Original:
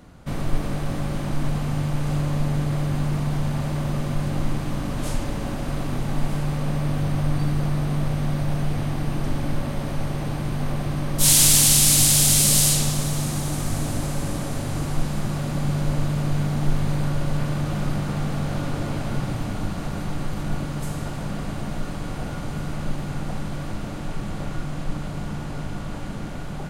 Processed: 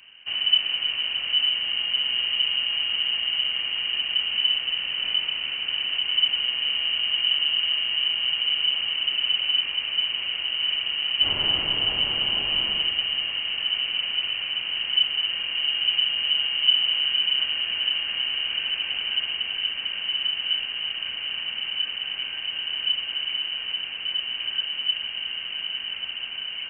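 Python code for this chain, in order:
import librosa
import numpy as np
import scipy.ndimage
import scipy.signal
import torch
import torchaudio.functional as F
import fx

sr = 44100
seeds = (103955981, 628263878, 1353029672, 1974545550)

y = fx.freq_invert(x, sr, carrier_hz=3000)
y = F.gain(torch.from_numpy(y), -3.5).numpy()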